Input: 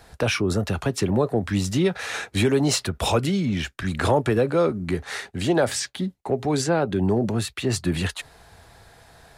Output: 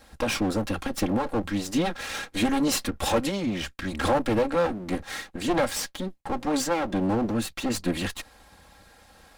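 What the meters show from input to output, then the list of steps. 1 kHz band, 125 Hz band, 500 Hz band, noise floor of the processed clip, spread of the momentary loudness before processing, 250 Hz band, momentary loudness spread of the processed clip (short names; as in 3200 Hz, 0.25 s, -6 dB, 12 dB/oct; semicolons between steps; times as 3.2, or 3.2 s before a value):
0.0 dB, -9.0 dB, -4.5 dB, -55 dBFS, 8 LU, -2.0 dB, 8 LU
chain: minimum comb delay 3.7 ms; gain -1.5 dB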